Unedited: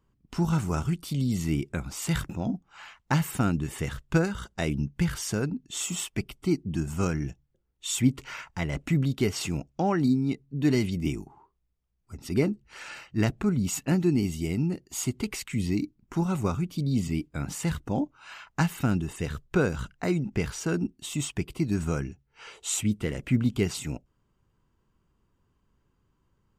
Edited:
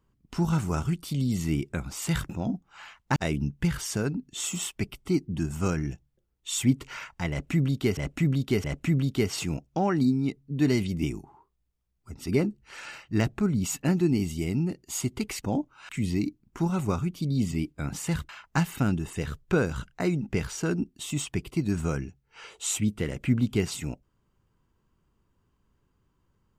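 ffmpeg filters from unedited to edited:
-filter_complex "[0:a]asplit=7[a][b][c][d][e][f][g];[a]atrim=end=3.162[h];[b]atrim=start=4.528:end=9.342[i];[c]atrim=start=8.668:end=9.342[j];[d]atrim=start=8.668:end=15.452[k];[e]atrim=start=17.848:end=18.322[l];[f]atrim=start=15.448:end=17.852[m];[g]atrim=start=18.318[n];[h][i]acrossfade=d=0.004:c1=hsin:c2=hsin[o];[o][j]acrossfade=d=0.004:c1=hsin:c2=hsin[p];[p][k]acrossfade=d=0.004:c1=hsin:c2=hsin[q];[q][l]acrossfade=d=0.004:c1=hsin:c2=hsin[r];[r][m]acrossfade=d=0.004:c1=hsin:c2=hsin[s];[s][n]acrossfade=d=0.004:c1=hsin:c2=hsin"

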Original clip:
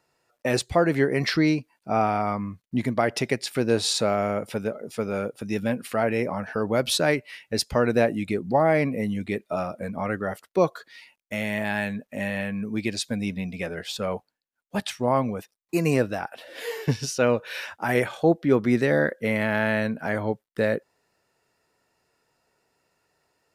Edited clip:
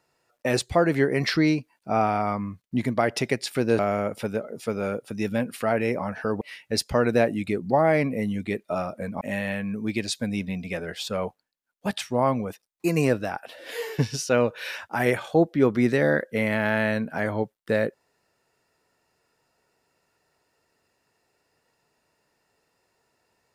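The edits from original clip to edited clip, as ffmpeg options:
-filter_complex "[0:a]asplit=4[a][b][c][d];[a]atrim=end=3.792[e];[b]atrim=start=4.098:end=6.722[f];[c]atrim=start=7.218:end=10.022[g];[d]atrim=start=12.098[h];[e][f]acrossfade=d=0.004:c1=hsin:c2=hsin[i];[i][g]acrossfade=d=0.004:c1=hsin:c2=hsin[j];[j][h]acrossfade=d=0.004:c1=hsin:c2=hsin"

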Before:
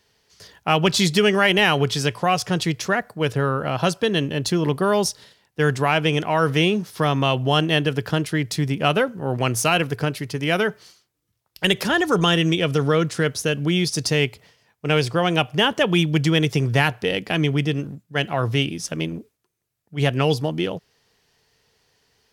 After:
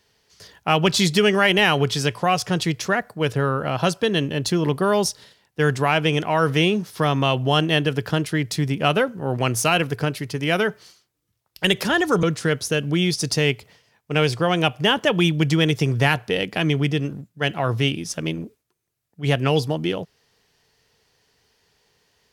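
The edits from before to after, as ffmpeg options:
-filter_complex "[0:a]asplit=2[a][b];[a]atrim=end=12.232[c];[b]atrim=start=12.968[d];[c][d]acrossfade=d=0.004:c1=hsin:c2=hsin"

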